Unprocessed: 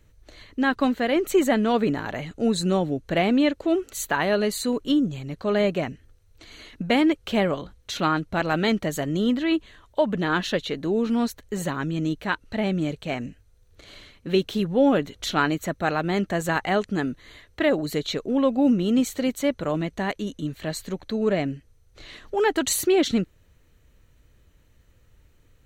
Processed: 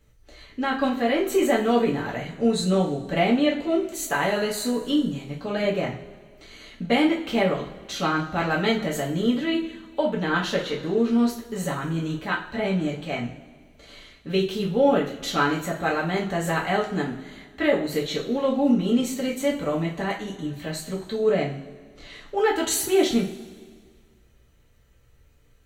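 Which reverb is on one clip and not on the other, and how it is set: two-slope reverb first 0.33 s, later 1.8 s, from -18 dB, DRR -4 dB; trim -5 dB

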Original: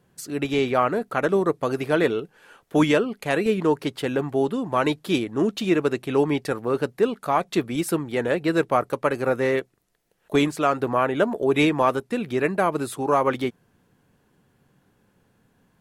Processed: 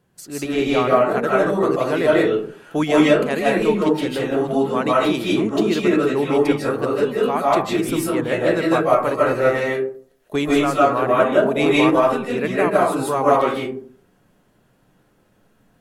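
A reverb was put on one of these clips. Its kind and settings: algorithmic reverb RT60 0.5 s, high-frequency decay 0.4×, pre-delay 115 ms, DRR -6 dB; trim -2 dB

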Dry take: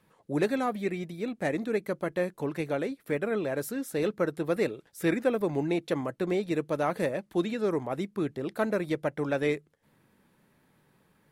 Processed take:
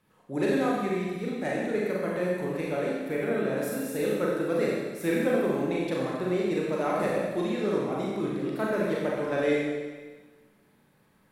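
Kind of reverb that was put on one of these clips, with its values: Schroeder reverb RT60 1.4 s, combs from 30 ms, DRR -4.5 dB; trim -4 dB

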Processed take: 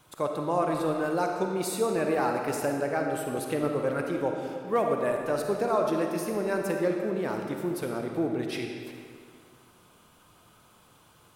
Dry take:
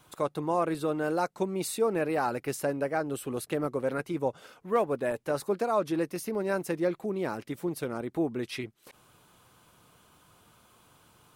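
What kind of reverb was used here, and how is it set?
algorithmic reverb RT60 2.2 s, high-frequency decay 0.8×, pre-delay 10 ms, DRR 2 dB

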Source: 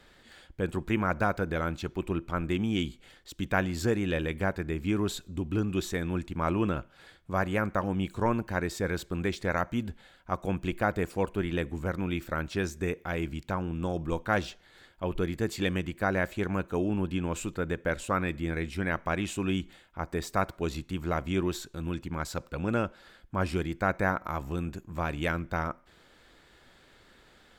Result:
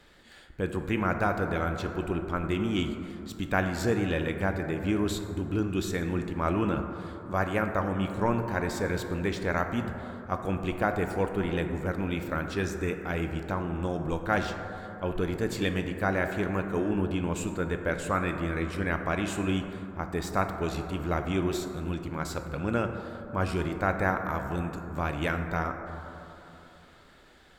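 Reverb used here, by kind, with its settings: plate-style reverb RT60 3.3 s, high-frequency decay 0.25×, DRR 5.5 dB

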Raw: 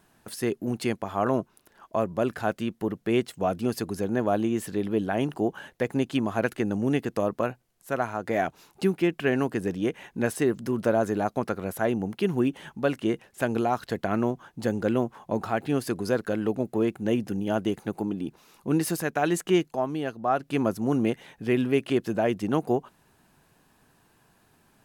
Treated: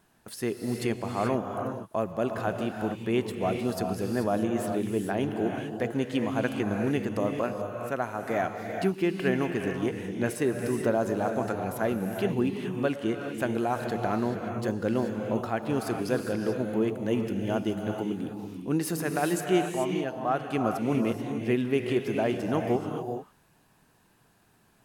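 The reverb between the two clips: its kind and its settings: gated-style reverb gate 460 ms rising, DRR 3.5 dB; trim -3 dB

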